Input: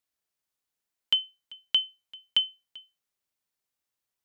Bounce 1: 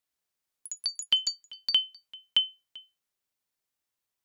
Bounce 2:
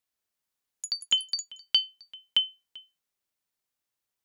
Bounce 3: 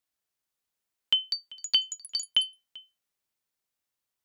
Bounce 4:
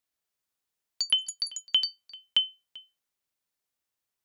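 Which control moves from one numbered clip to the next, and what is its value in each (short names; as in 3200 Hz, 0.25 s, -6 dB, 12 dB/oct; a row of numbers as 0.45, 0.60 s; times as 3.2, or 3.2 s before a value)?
echoes that change speed, time: 0.107, 0.168, 0.571, 0.255 s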